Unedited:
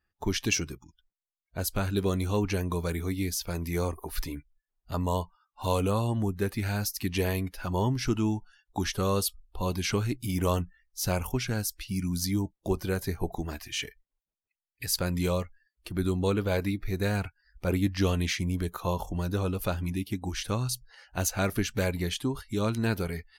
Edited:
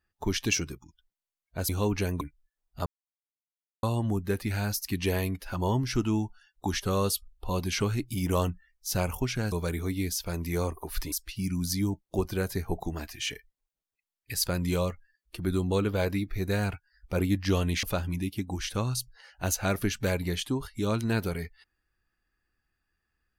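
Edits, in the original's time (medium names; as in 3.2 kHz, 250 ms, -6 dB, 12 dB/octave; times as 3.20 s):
1.69–2.21 s: delete
2.73–4.33 s: move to 11.64 s
4.98–5.95 s: mute
18.35–19.57 s: delete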